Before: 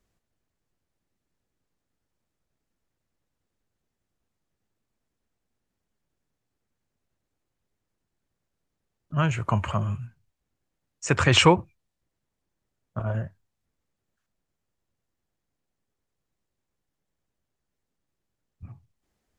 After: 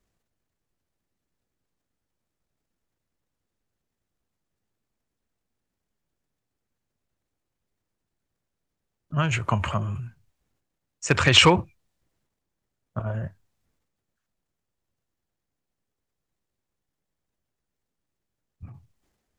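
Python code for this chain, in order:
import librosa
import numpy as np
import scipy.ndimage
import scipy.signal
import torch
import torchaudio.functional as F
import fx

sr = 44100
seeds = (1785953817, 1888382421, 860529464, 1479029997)

y = fx.transient(x, sr, attack_db=4, sustain_db=8)
y = np.clip(y, -10.0 ** (-4.0 / 20.0), 10.0 ** (-4.0 / 20.0))
y = fx.dynamic_eq(y, sr, hz=3500.0, q=0.8, threshold_db=-33.0, ratio=4.0, max_db=6)
y = y * librosa.db_to_amplitude(-2.5)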